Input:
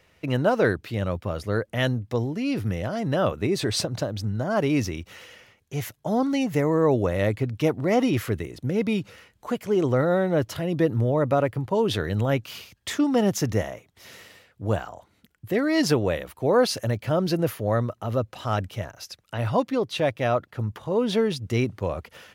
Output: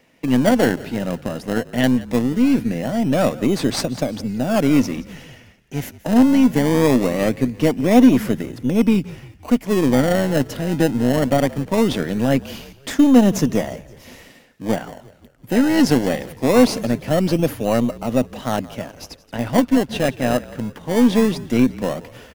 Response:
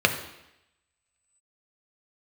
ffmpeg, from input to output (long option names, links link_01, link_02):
-filter_complex "[0:a]highpass=frequency=150:width=0.5412,highpass=frequency=150:width=1.3066,asplit=2[link_01][link_02];[link_02]acrusher=samples=26:mix=1:aa=0.000001:lfo=1:lforange=26:lforate=0.21,volume=-4.5dB[link_03];[link_01][link_03]amix=inputs=2:normalize=0,equalizer=frequency=250:width_type=o:width=0.33:gain=9,equalizer=frequency=400:width_type=o:width=0.33:gain=-5,equalizer=frequency=1250:width_type=o:width=0.33:gain=-5,equalizer=frequency=4000:width_type=o:width=0.33:gain=-3,aeval=exprs='0.668*(cos(1*acos(clip(val(0)/0.668,-1,1)))-cos(1*PI/2))+0.0299*(cos(8*acos(clip(val(0)/0.668,-1,1)))-cos(8*PI/2))':channel_layout=same,asplit=5[link_04][link_05][link_06][link_07][link_08];[link_05]adelay=174,afreqshift=-46,volume=-19dB[link_09];[link_06]adelay=348,afreqshift=-92,volume=-25.2dB[link_10];[link_07]adelay=522,afreqshift=-138,volume=-31.4dB[link_11];[link_08]adelay=696,afreqshift=-184,volume=-37.6dB[link_12];[link_04][link_09][link_10][link_11][link_12]amix=inputs=5:normalize=0,volume=2dB"